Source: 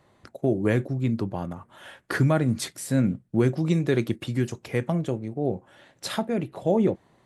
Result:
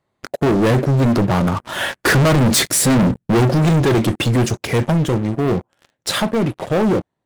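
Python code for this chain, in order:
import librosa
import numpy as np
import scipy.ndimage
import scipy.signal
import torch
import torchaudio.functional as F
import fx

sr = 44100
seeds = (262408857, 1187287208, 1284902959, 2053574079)

y = fx.doppler_pass(x, sr, speed_mps=11, closest_m=11.0, pass_at_s=2.4)
y = np.clip(y, -10.0 ** (-17.5 / 20.0), 10.0 ** (-17.5 / 20.0))
y = fx.leveller(y, sr, passes=5)
y = y * librosa.db_to_amplitude(6.5)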